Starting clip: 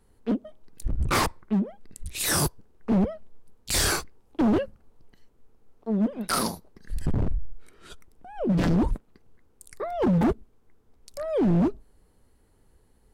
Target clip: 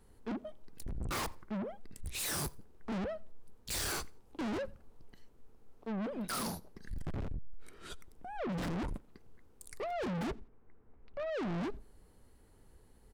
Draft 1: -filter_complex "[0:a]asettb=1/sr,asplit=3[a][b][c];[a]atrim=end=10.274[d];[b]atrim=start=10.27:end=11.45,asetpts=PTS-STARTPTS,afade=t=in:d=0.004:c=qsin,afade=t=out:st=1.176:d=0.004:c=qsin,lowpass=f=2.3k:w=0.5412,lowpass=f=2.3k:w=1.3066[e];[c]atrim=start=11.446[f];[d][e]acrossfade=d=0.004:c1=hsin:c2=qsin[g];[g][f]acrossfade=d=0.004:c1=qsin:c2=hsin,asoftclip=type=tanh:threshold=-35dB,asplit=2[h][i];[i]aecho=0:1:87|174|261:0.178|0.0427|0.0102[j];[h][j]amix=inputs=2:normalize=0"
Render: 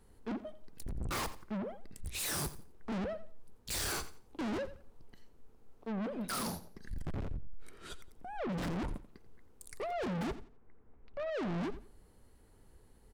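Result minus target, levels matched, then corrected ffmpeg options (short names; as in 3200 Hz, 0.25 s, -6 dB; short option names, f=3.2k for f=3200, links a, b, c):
echo-to-direct +11.5 dB
-filter_complex "[0:a]asettb=1/sr,asplit=3[a][b][c];[a]atrim=end=10.274[d];[b]atrim=start=10.27:end=11.45,asetpts=PTS-STARTPTS,afade=t=in:d=0.004:c=qsin,afade=t=out:st=1.176:d=0.004:c=qsin,lowpass=f=2.3k:w=0.5412,lowpass=f=2.3k:w=1.3066[e];[c]atrim=start=11.446[f];[d][e]acrossfade=d=0.004:c1=hsin:c2=qsin[g];[g][f]acrossfade=d=0.004:c1=qsin:c2=hsin,asoftclip=type=tanh:threshold=-35dB,asplit=2[h][i];[i]aecho=0:1:87|174:0.0473|0.0114[j];[h][j]amix=inputs=2:normalize=0"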